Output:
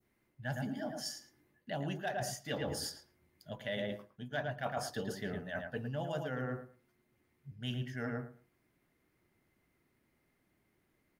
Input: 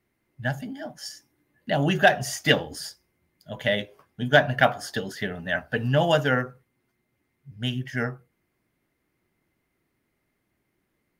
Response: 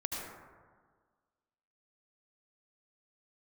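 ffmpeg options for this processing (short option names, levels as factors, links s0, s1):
-filter_complex "[0:a]asplit=2[s0][s1];[s1]adelay=111,lowpass=f=1700:p=1,volume=0.531,asplit=2[s2][s3];[s3]adelay=111,lowpass=f=1700:p=1,volume=0.18,asplit=2[s4][s5];[s5]adelay=111,lowpass=f=1700:p=1,volume=0.18[s6];[s0][s2][s4][s6]amix=inputs=4:normalize=0,areverse,acompressor=threshold=0.0251:ratio=10,areverse,adynamicequalizer=threshold=0.00251:dfrequency=2300:dqfactor=0.85:tfrequency=2300:tqfactor=0.85:attack=5:release=100:ratio=0.375:range=3:mode=cutabove:tftype=bell,volume=0.794"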